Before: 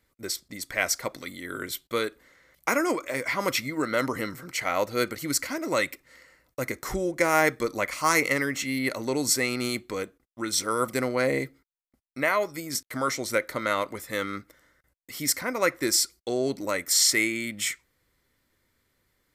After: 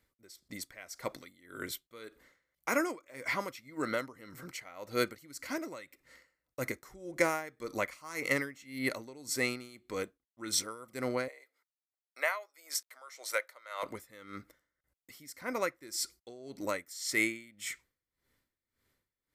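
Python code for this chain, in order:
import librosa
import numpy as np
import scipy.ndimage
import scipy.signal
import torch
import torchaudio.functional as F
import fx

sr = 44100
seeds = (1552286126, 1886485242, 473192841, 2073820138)

y = fx.highpass(x, sr, hz=570.0, slope=24, at=(11.28, 13.83))
y = y * 10.0 ** (-20 * (0.5 - 0.5 * np.cos(2.0 * np.pi * 1.8 * np.arange(len(y)) / sr)) / 20.0)
y = y * 10.0 ** (-4.0 / 20.0)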